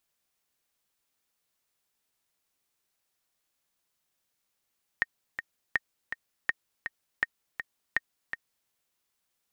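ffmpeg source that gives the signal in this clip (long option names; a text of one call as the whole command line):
ffmpeg -f lavfi -i "aevalsrc='pow(10,(-11.5-8.5*gte(mod(t,2*60/163),60/163))/20)*sin(2*PI*1850*mod(t,60/163))*exp(-6.91*mod(t,60/163)/0.03)':duration=3.68:sample_rate=44100" out.wav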